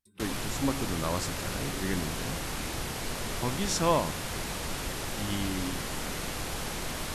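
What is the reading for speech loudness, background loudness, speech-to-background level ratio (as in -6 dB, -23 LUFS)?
-33.5 LUFS, -34.5 LUFS, 1.0 dB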